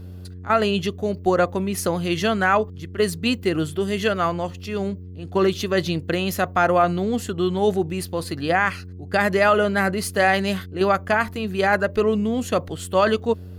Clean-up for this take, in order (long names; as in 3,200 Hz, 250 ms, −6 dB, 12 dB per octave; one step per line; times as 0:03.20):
hum removal 90.5 Hz, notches 5